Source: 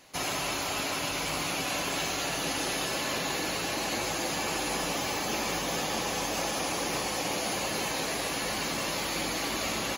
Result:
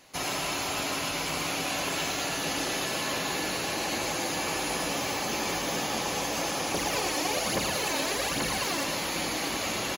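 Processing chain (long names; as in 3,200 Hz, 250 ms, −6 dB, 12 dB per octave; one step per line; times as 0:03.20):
0:06.74–0:08.84: phase shifter 1.2 Hz, delay 3.6 ms, feedback 59%
single-tap delay 114 ms −7.5 dB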